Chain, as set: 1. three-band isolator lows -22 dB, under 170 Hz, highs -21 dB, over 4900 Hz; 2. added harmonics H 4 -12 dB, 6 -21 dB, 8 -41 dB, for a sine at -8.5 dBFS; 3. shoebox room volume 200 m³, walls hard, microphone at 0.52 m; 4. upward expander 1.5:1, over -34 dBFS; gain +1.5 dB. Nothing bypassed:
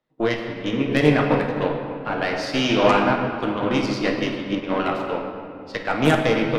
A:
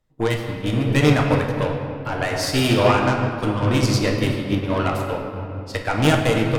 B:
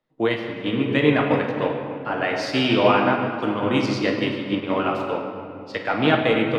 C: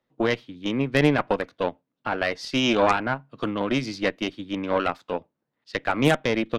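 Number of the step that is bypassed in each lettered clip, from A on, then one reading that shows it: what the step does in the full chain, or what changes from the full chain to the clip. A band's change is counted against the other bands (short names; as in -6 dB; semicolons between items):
1, 8 kHz band +8.5 dB; 2, crest factor change -2.0 dB; 3, 8 kHz band +2.0 dB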